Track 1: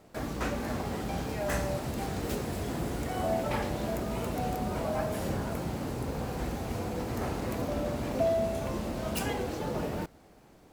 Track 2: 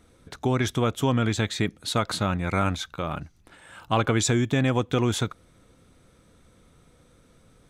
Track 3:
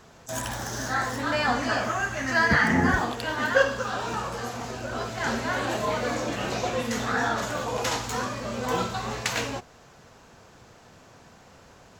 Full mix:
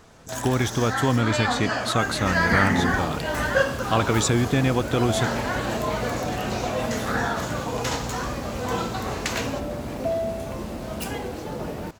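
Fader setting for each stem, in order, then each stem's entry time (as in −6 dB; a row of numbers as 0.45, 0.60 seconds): +1.5, +1.0, −0.5 decibels; 1.85, 0.00, 0.00 seconds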